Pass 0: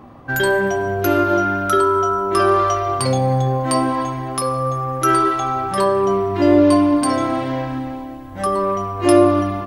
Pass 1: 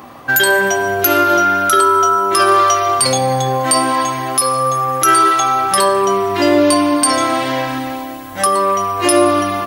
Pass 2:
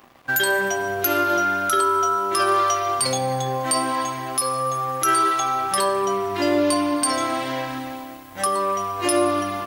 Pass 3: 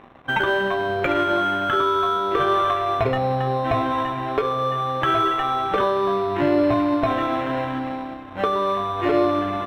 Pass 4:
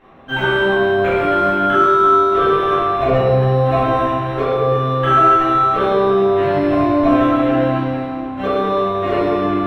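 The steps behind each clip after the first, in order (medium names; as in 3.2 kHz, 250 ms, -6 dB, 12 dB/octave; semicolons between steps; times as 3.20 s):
tilt EQ +3.5 dB/octave; in parallel at -0.5 dB: compression, threshold -24 dBFS, peak gain reduction 13.5 dB; on the sum: loudness maximiser +4 dB; trim -1 dB
crossover distortion -37.5 dBFS; trim -7.5 dB
in parallel at 0 dB: compression, threshold -27 dBFS, peak gain reduction 11.5 dB; on the sum: sample-rate reducer 4.7 kHz, jitter 0%; distance through air 460 m
reverberation RT60 1.6 s, pre-delay 3 ms, DRR -13.5 dB; trim -12.5 dB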